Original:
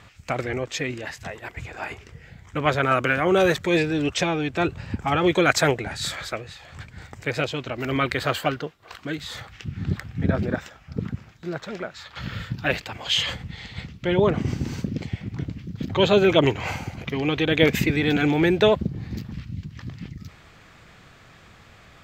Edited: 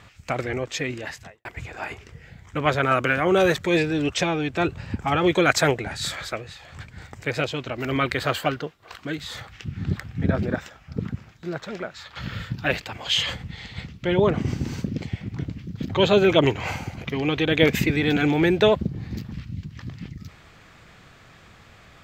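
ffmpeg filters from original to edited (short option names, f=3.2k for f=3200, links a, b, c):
-filter_complex "[0:a]asplit=2[a][b];[a]atrim=end=1.45,asetpts=PTS-STARTPTS,afade=t=out:st=1.16:d=0.29:c=qua[c];[b]atrim=start=1.45,asetpts=PTS-STARTPTS,afade=t=in:d=0.004:c=hsin[d];[c][d]concat=n=2:v=0:a=1"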